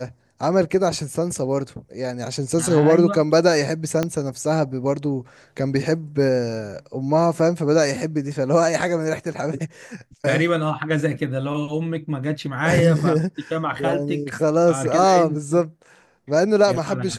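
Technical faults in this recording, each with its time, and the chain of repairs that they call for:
4.03 s: pop -8 dBFS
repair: de-click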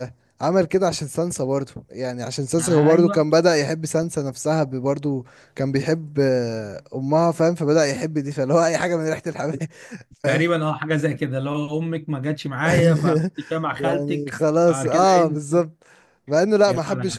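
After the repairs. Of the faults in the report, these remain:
4.03 s: pop

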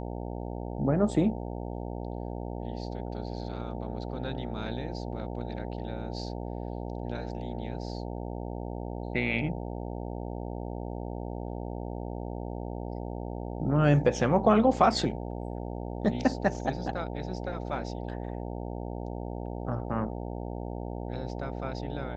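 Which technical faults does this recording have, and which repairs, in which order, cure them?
buzz 60 Hz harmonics 15 -36 dBFS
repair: de-hum 60 Hz, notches 15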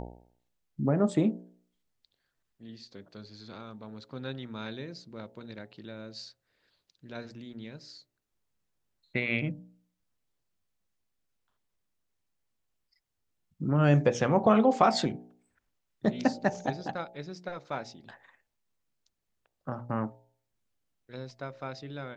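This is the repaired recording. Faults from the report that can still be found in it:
nothing left

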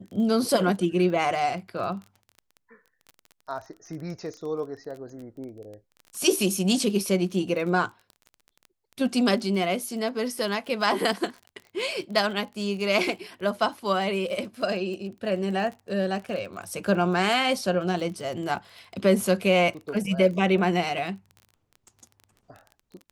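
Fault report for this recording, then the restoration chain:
crackle 23 per s -35 dBFS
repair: de-click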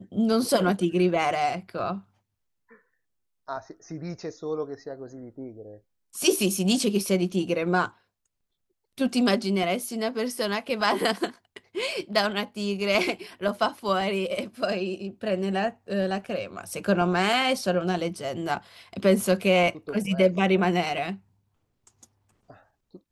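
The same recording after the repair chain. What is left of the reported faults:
nothing left

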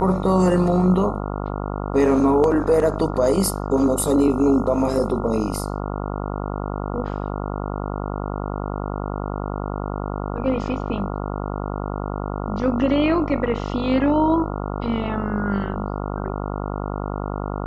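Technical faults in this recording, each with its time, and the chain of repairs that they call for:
buzz 50 Hz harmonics 28 -27 dBFS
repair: de-hum 50 Hz, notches 28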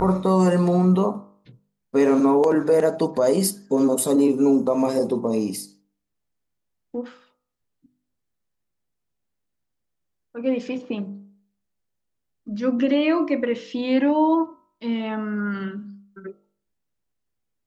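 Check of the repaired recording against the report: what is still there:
nothing left

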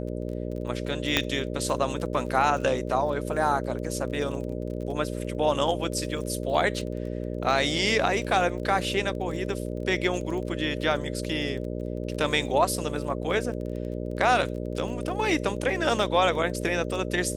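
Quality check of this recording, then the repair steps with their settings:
buzz 60 Hz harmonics 10 -32 dBFS
crackle 31 per s -35 dBFS
1.17 s: pop -6 dBFS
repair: de-click; de-hum 60 Hz, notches 10

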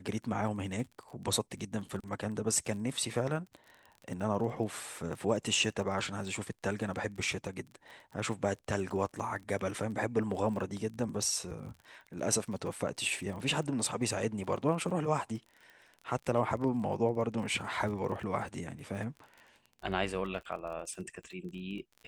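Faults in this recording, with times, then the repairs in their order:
crackle 31 per s -42 dBFS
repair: de-click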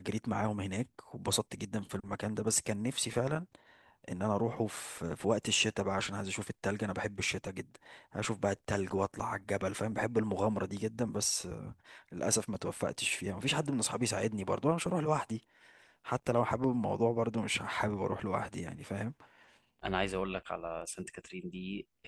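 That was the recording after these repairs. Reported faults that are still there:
nothing left

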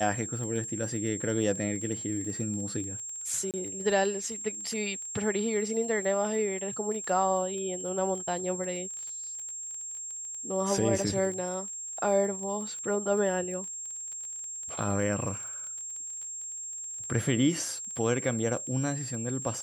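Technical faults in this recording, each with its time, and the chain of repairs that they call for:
crackle 22 per s -37 dBFS
whine 7.5 kHz -36 dBFS
3.51–3.54 s: dropout 28 ms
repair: de-click; band-stop 7.5 kHz, Q 30; interpolate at 3.51 s, 28 ms

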